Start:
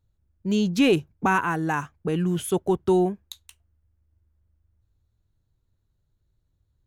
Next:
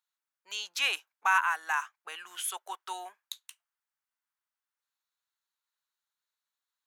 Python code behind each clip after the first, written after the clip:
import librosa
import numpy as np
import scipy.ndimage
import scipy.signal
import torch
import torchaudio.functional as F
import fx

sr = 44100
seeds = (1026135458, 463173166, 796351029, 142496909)

y = scipy.signal.sosfilt(scipy.signal.butter(4, 1000.0, 'highpass', fs=sr, output='sos'), x)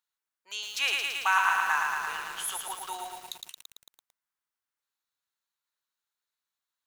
y = fx.echo_crushed(x, sr, ms=112, feedback_pct=80, bits=8, wet_db=-3.0)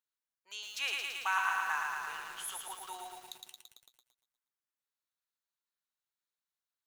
y = fx.echo_feedback(x, sr, ms=120, feedback_pct=48, wet_db=-13.0)
y = y * librosa.db_to_amplitude(-7.5)